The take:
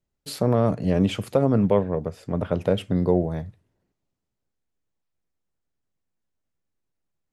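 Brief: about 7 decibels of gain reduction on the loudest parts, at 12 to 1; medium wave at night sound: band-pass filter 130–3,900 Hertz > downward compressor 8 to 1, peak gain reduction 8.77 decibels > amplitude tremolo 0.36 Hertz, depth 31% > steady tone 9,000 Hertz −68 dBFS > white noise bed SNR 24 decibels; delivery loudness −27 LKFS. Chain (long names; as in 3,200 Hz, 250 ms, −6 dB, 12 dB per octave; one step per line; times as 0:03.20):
downward compressor 12 to 1, threshold −21 dBFS
band-pass filter 130–3,900 Hz
downward compressor 8 to 1, threshold −28 dBFS
amplitude tremolo 0.36 Hz, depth 31%
steady tone 9,000 Hz −68 dBFS
white noise bed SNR 24 dB
level +9 dB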